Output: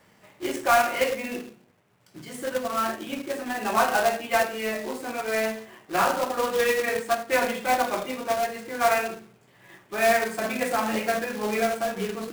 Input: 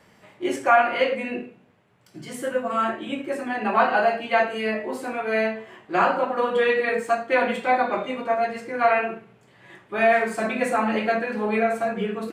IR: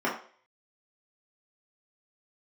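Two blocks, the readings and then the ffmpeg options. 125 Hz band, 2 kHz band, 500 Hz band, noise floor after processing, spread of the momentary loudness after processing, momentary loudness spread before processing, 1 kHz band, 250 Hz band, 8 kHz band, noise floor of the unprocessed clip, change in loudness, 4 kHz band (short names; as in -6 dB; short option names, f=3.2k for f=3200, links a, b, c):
-3.0 dB, -2.5 dB, -3.0 dB, -59 dBFS, 11 LU, 11 LU, -2.5 dB, -4.0 dB, n/a, -57 dBFS, -2.5 dB, +2.5 dB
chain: -af "bandreject=f=71.91:t=h:w=4,bandreject=f=143.82:t=h:w=4,bandreject=f=215.73:t=h:w=4,bandreject=f=287.64:t=h:w=4,bandreject=f=359.55:t=h:w=4,bandreject=f=431.46:t=h:w=4,bandreject=f=503.37:t=h:w=4,acrusher=bits=2:mode=log:mix=0:aa=0.000001,volume=-3dB"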